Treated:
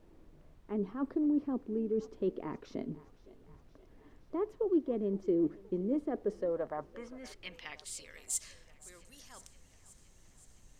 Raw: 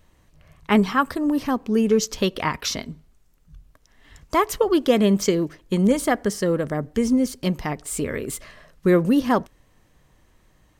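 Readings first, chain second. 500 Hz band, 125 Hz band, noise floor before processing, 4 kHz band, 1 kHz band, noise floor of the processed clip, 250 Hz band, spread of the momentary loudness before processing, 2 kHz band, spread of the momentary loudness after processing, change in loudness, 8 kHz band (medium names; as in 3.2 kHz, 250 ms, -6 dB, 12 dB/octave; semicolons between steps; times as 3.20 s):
-13.0 dB, -19.5 dB, -60 dBFS, -21.5 dB, -21.5 dB, -62 dBFS, -13.5 dB, 9 LU, -22.5 dB, 22 LU, -13.5 dB, -11.5 dB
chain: reverse; compression 4:1, threshold -35 dBFS, peak gain reduction 19 dB; reverse; band-pass sweep 340 Hz -> 7.1 kHz, 6.07–8.27 s; thinning echo 519 ms, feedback 71%, high-pass 410 Hz, level -19 dB; added noise brown -66 dBFS; trim +7 dB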